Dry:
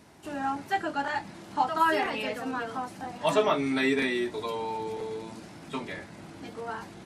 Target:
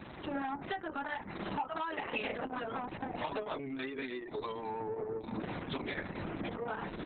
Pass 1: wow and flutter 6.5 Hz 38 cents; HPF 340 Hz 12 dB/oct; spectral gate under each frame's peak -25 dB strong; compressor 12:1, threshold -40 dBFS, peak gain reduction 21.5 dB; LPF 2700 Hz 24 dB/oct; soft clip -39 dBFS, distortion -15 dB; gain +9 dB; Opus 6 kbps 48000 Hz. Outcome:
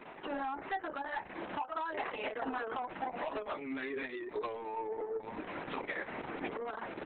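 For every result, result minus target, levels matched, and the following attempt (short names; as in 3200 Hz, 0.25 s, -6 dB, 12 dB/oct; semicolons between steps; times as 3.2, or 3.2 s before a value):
4000 Hz band -3.5 dB; 250 Hz band -3.0 dB
wow and flutter 6.5 Hz 38 cents; HPF 340 Hz 12 dB/oct; spectral gate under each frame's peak -25 dB strong; compressor 12:1, threshold -40 dBFS, peak gain reduction 21.5 dB; LPF 5600 Hz 24 dB/oct; soft clip -39 dBFS, distortion -15 dB; gain +9 dB; Opus 6 kbps 48000 Hz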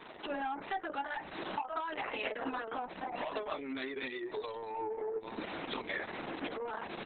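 250 Hz band -3.0 dB
wow and flutter 6.5 Hz 38 cents; spectral gate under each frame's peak -25 dB strong; compressor 12:1, threshold -40 dBFS, peak gain reduction 22 dB; LPF 5600 Hz 24 dB/oct; soft clip -39 dBFS, distortion -15 dB; gain +9 dB; Opus 6 kbps 48000 Hz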